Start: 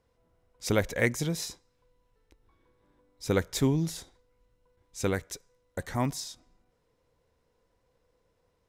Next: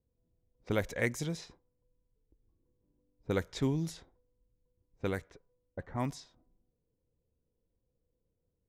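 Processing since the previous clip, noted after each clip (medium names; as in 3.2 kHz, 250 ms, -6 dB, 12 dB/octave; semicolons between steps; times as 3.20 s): level-controlled noise filter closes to 320 Hz, open at -24.5 dBFS; trim -5.5 dB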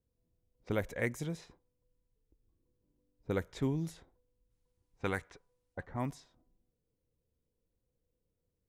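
dynamic bell 5 kHz, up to -7 dB, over -58 dBFS, Q 1; time-frequency box 4.51–5.84 s, 710–11000 Hz +7 dB; trim -2 dB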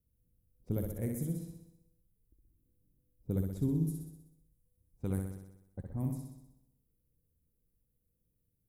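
FFT filter 190 Hz 0 dB, 1.9 kHz -27 dB, 6.5 kHz -13 dB, 11 kHz +5 dB; on a send: flutter echo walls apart 10.8 m, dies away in 0.84 s; on the sum: trim +3.5 dB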